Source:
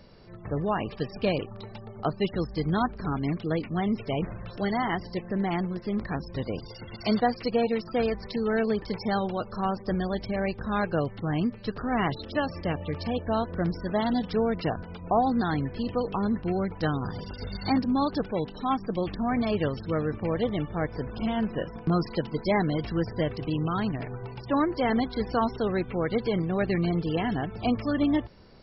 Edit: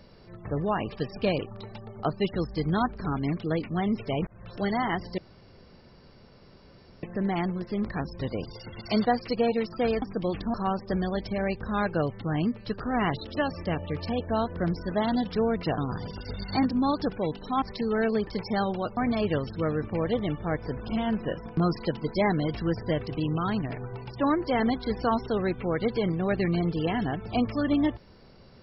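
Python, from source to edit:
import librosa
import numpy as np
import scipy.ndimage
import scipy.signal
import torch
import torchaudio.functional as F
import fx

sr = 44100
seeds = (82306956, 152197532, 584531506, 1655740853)

y = fx.edit(x, sr, fx.fade_in_span(start_s=4.27, length_s=0.32),
    fx.insert_room_tone(at_s=5.18, length_s=1.85),
    fx.swap(start_s=8.17, length_s=1.35, other_s=18.75, other_length_s=0.52),
    fx.cut(start_s=14.76, length_s=2.15), tone=tone)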